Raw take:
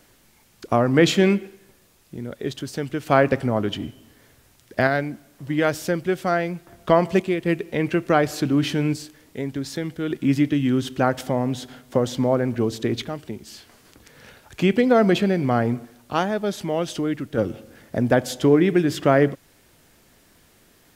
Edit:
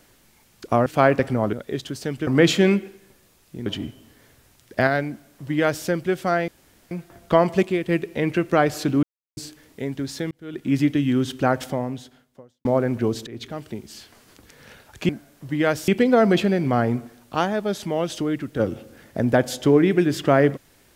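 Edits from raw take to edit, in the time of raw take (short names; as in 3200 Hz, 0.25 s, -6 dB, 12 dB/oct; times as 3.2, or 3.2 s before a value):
0.86–2.25 swap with 2.99–3.66
5.07–5.86 copy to 14.66
6.48 insert room tone 0.43 s
8.6–8.94 mute
9.88–10.37 fade in
11.19–12.22 fade out quadratic
12.84–13.21 fade in, from -21.5 dB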